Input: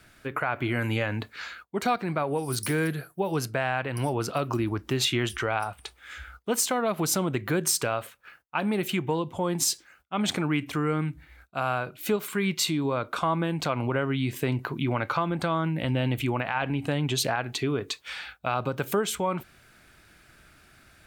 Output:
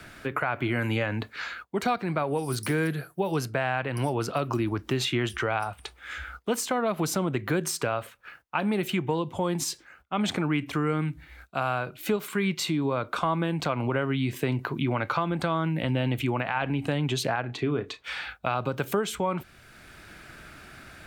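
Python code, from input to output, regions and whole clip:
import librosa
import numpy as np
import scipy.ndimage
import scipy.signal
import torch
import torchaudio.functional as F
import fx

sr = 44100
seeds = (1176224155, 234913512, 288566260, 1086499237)

y = fx.chain(x, sr, fx.lowpass(hz=2200.0, slope=6),
    fx.doubler(ms=33.0, db=-12.5), at=(17.4, 18.04))
y = fx.high_shelf(y, sr, hz=6200.0, db=-5.0)
y = fx.band_squash(y, sr, depth_pct=40)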